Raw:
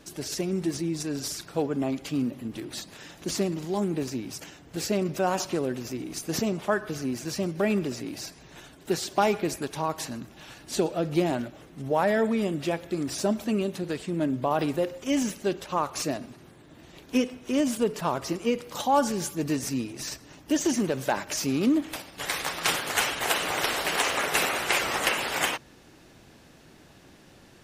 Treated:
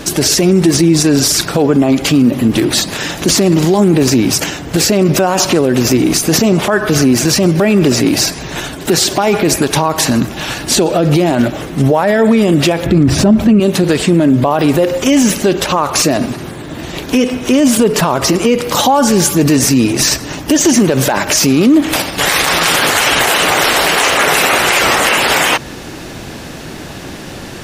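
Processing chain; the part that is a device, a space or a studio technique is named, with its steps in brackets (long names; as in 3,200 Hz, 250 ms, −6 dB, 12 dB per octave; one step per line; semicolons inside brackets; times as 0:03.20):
0:12.86–0:13.60: bass and treble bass +13 dB, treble −11 dB
loud club master (downward compressor 2 to 1, threshold −29 dBFS, peak gain reduction 8 dB; hard clipping −16 dBFS, distortion −42 dB; boost into a limiter +26.5 dB)
level −1 dB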